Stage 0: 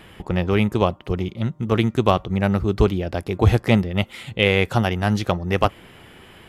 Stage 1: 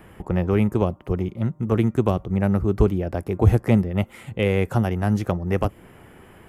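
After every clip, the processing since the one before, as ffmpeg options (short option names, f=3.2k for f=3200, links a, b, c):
-filter_complex "[0:a]equalizer=f=3.8k:w=0.97:g=-14.5,acrossover=split=470|3000[a][b][c];[b]acompressor=threshold=-26dB:ratio=6[d];[a][d][c]amix=inputs=3:normalize=0"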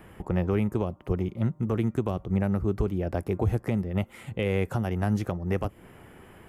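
-af "alimiter=limit=-13.5dB:level=0:latency=1:release=238,volume=-2.5dB"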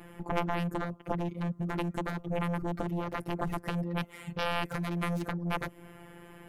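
-af "afftfilt=real='hypot(re,im)*cos(PI*b)':imag='0':win_size=1024:overlap=0.75,aeval=exprs='0.178*(cos(1*acos(clip(val(0)/0.178,-1,1)))-cos(1*PI/2))+0.0794*(cos(3*acos(clip(val(0)/0.178,-1,1)))-cos(3*PI/2))+0.0158*(cos(7*acos(clip(val(0)/0.178,-1,1)))-cos(7*PI/2))':c=same,volume=3.5dB"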